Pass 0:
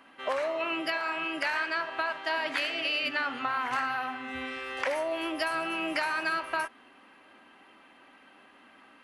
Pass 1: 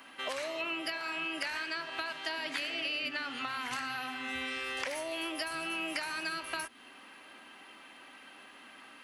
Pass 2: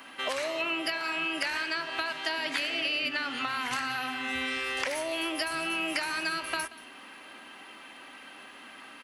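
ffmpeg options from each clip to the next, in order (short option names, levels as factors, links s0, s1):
-filter_complex "[0:a]highshelf=f=2600:g=12,acrossover=split=340|2300[s0][s1][s2];[s0]acompressor=threshold=0.00501:ratio=4[s3];[s1]acompressor=threshold=0.01:ratio=4[s4];[s2]acompressor=threshold=0.01:ratio=4[s5];[s3][s4][s5]amix=inputs=3:normalize=0"
-af "aecho=1:1:181:0.119,volume=1.78"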